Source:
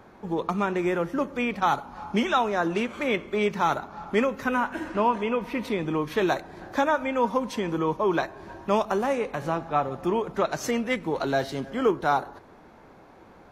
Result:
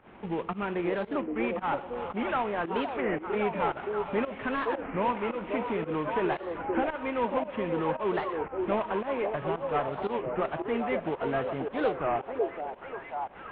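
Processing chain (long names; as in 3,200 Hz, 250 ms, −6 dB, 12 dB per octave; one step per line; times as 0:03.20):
variable-slope delta modulation 16 kbit/s
in parallel at +2 dB: downward compressor, threshold −36 dBFS, peak gain reduction 17 dB
on the sum: echo through a band-pass that steps 537 ms, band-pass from 480 Hz, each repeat 0.7 octaves, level −1 dB
fake sidechain pumping 113 BPM, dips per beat 1, −16 dB, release 135 ms
wow of a warped record 33 1/3 rpm, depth 250 cents
level −6.5 dB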